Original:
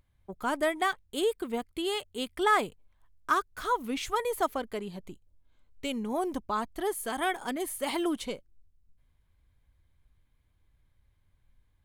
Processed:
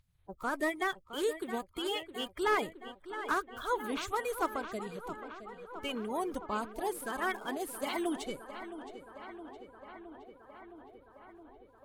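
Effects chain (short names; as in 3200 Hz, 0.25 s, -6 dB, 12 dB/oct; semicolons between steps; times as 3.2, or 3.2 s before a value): bin magnitudes rounded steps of 30 dB; tape echo 0.666 s, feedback 81%, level -11 dB, low-pass 3000 Hz; slew limiter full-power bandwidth 110 Hz; gain -3.5 dB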